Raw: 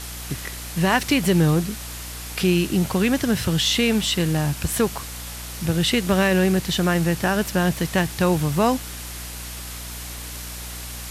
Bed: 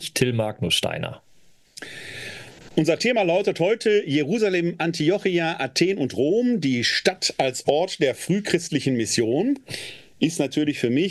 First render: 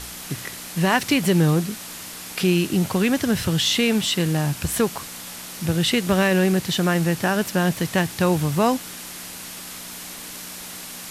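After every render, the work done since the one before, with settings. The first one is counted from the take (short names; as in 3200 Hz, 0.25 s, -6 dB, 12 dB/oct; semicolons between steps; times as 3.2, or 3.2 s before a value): de-hum 60 Hz, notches 2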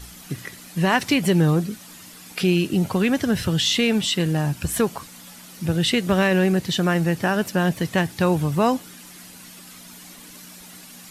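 denoiser 10 dB, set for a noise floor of -36 dBFS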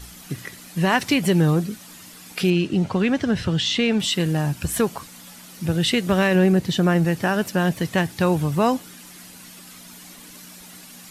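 2.5–4 air absorption 79 m; 6.35–7.05 tilt shelf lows +3 dB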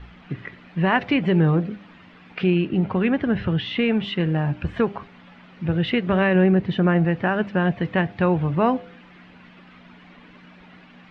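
LPF 2700 Hz 24 dB/oct; de-hum 100.5 Hz, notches 8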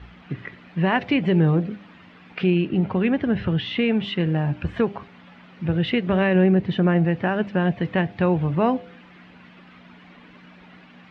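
HPF 44 Hz; dynamic EQ 1300 Hz, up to -4 dB, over -35 dBFS, Q 1.5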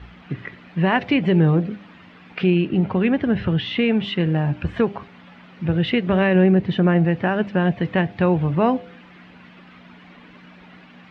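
gain +2 dB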